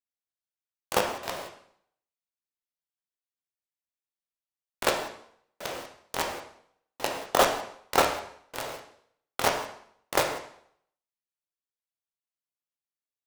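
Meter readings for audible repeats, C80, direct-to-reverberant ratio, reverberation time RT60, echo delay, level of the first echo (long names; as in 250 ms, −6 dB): no echo audible, 11.0 dB, 3.0 dB, 0.65 s, no echo audible, no echo audible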